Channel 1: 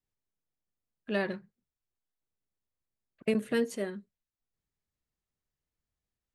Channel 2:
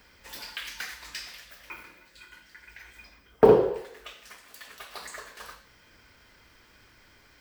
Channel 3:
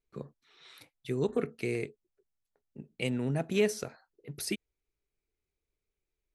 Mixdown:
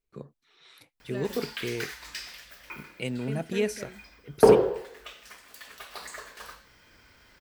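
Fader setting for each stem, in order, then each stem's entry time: -9.5, 0.0, -0.5 dB; 0.00, 1.00, 0.00 s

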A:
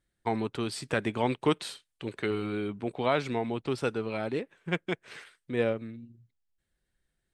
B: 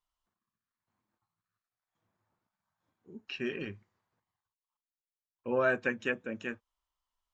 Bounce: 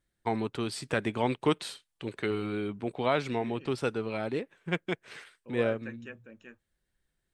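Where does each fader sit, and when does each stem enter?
-0.5, -13.0 dB; 0.00, 0.00 s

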